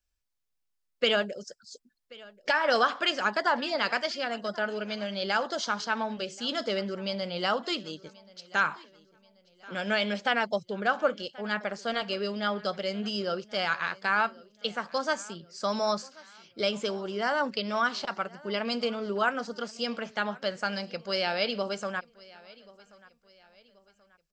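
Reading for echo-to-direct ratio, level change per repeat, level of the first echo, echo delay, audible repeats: -22.0 dB, -8.0 dB, -22.5 dB, 1.082 s, 2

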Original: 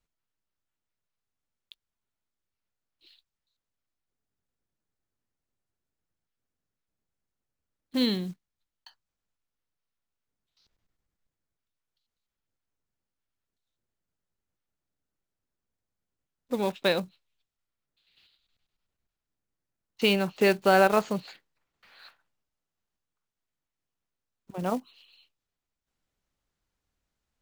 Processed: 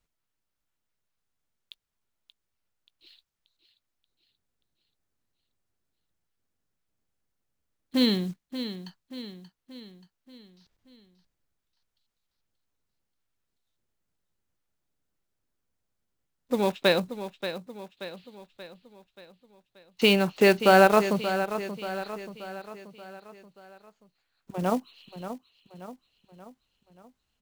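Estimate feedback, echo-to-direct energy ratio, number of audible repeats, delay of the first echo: 51%, -9.5 dB, 5, 0.581 s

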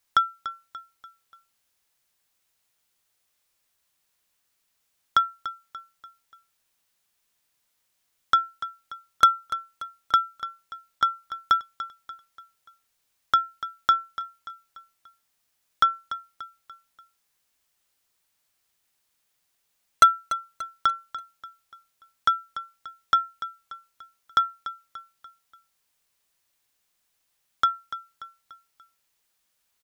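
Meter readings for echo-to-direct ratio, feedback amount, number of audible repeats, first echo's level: -12.5 dB, 45%, 4, -13.5 dB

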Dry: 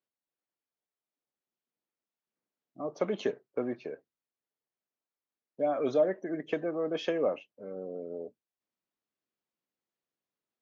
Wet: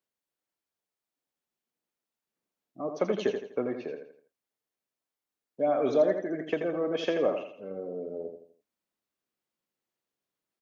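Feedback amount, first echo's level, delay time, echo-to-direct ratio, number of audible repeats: 37%, -7.0 dB, 83 ms, -6.5 dB, 4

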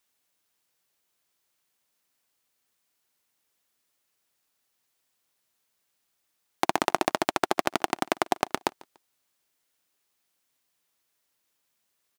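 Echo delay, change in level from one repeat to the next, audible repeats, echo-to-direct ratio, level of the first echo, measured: 0.145 s, -10.5 dB, 2, -23.0 dB, -23.5 dB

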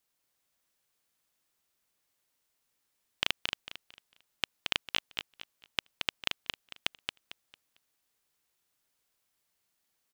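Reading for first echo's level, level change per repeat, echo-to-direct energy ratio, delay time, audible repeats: -4.5 dB, -11.0 dB, -4.0 dB, 0.225 s, 3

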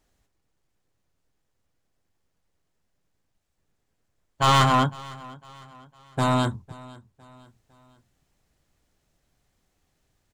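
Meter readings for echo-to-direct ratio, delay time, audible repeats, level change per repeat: -20.5 dB, 0.505 s, 2, -7.0 dB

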